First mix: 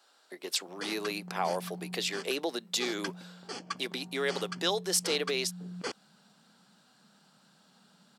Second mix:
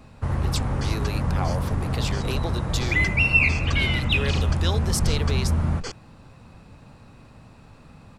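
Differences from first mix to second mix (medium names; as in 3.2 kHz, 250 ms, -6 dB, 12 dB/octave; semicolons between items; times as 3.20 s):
first sound: unmuted; second sound: add resonant low-pass 7 kHz, resonance Q 2.1; master: remove high-pass 190 Hz 24 dB/octave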